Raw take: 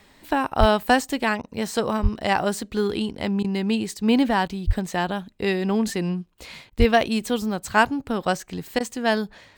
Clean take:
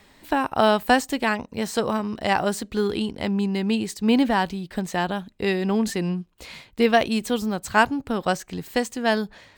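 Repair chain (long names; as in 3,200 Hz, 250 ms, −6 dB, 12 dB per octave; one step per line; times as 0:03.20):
clipped peaks rebuilt −5 dBFS
high-pass at the plosives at 0:00.59/0:02.02/0:04.66/0:06.78
repair the gap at 0:01.42/0:03.43/0:04.48/0:06.70/0:08.79, 12 ms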